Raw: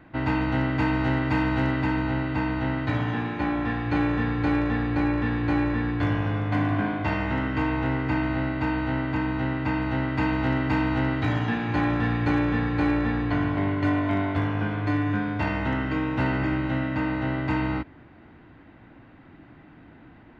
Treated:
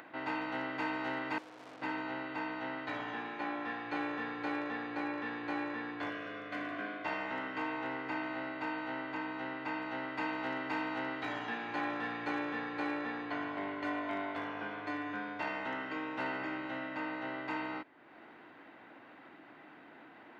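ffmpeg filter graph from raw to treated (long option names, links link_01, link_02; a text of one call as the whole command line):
ffmpeg -i in.wav -filter_complex "[0:a]asettb=1/sr,asplit=3[link_01][link_02][link_03];[link_01]atrim=end=1.384[link_04];[link_02]atrim=start=1.38:end=1.82,asetpts=PTS-STARTPTS,afade=type=in:duration=0.004:curve=qsin,afade=type=out:start_time=0.436:duration=0.004:curve=qsin,lowpass=1400,tiltshelf=frequency=750:gain=3.5,aeval=exprs='(tanh(89.1*val(0)+0.7)-tanh(0.7))/89.1':channel_layout=same[link_05];[link_03]atrim=start=1.816[link_06];[link_04][link_05]acrossfade=duration=0.004:curve1=hsin:curve2=qsin[link_07];[link_07][link_06]acrossfade=duration=0.004:curve1=qsin:curve2=hsin,asettb=1/sr,asplit=3[link_08][link_09][link_10];[link_08]atrim=end=6.104[link_11];[link_09]atrim=start=6.1:end=7.05,asetpts=PTS-STARTPTS,afade=type=in:duration=0.004:curve=qsin,afade=type=out:start_time=0.946:duration=0.004:curve=qsin,asuperstop=centerf=870:order=4:qfactor=2.3,lowshelf=frequency=120:gain=-8.5[link_12];[link_10]atrim=start=7.046[link_13];[link_11][link_12]acrossfade=duration=0.004:curve1=hsin:curve2=qsin[link_14];[link_14][link_13]acrossfade=duration=0.004:curve1=qsin:curve2=hsin,acompressor=mode=upward:threshold=-32dB:ratio=2.5,highpass=430,volume=-7.5dB" out.wav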